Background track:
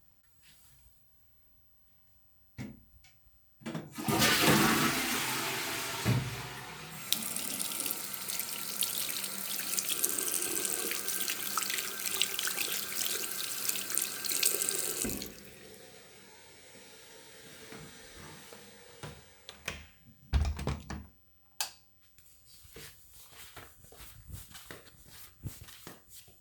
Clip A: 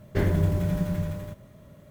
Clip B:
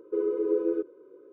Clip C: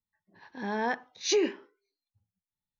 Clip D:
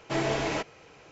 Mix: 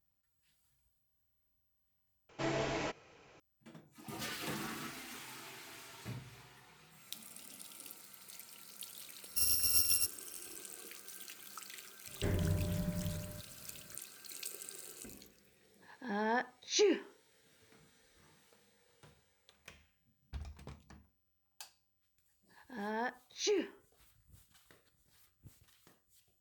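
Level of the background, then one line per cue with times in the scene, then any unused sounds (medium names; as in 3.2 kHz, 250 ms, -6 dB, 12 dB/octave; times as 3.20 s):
background track -16.5 dB
2.29 s: replace with D -8 dB
9.24 s: add B -4.5 dB + bit-reversed sample order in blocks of 256 samples
12.07 s: add A -11.5 dB
15.47 s: add C -4 dB
22.15 s: add C -8 dB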